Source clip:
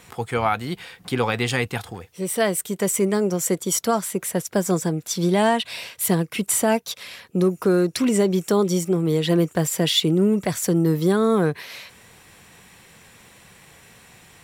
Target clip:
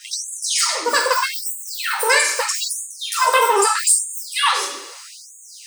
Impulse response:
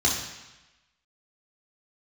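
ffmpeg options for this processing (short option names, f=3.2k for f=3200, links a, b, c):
-filter_complex "[0:a]acrossover=split=570|7400[a][b][c];[a]acompressor=threshold=-31dB:ratio=4[d];[d][b][c]amix=inputs=3:normalize=0,alimiter=limit=-15dB:level=0:latency=1:release=433,aexciter=amount=14.5:drive=2.1:freq=11k,asuperstop=centerf=5000:order=20:qfactor=6.6,asetrate=112455,aresample=44100[e];[1:a]atrim=start_sample=2205,asetrate=57330,aresample=44100[f];[e][f]afir=irnorm=-1:irlink=0,asplit=2[g][h];[h]asoftclip=type=hard:threshold=-14dB,volume=-12dB[i];[g][i]amix=inputs=2:normalize=0,afftfilt=real='re*gte(b*sr/1024,230*pow(6500/230,0.5+0.5*sin(2*PI*0.79*pts/sr)))':imag='im*gte(b*sr/1024,230*pow(6500/230,0.5+0.5*sin(2*PI*0.79*pts/sr)))':win_size=1024:overlap=0.75,volume=-1dB"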